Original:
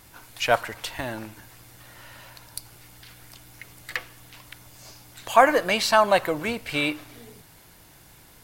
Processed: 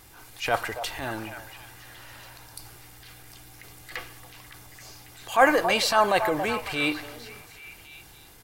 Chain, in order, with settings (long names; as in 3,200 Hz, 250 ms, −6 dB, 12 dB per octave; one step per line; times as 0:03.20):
comb filter 2.5 ms, depth 30%
echo through a band-pass that steps 277 ms, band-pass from 720 Hz, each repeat 0.7 octaves, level −10 dB
transient designer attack −8 dB, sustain +2 dB